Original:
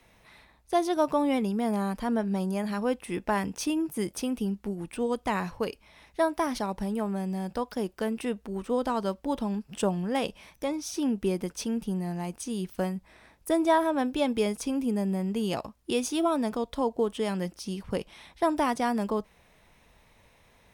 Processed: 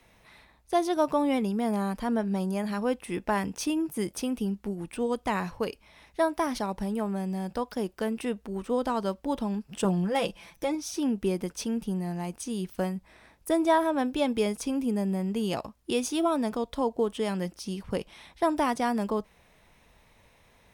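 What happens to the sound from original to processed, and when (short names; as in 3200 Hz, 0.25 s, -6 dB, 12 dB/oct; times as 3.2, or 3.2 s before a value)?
9.84–10.75 comb 5.9 ms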